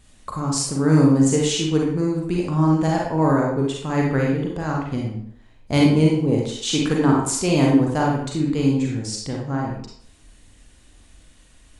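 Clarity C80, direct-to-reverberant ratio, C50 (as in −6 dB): 5.5 dB, −2.0 dB, 1.0 dB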